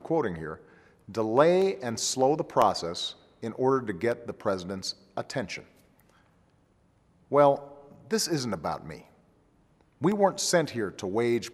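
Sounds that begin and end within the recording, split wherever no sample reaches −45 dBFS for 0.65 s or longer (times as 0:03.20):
0:07.31–0:09.02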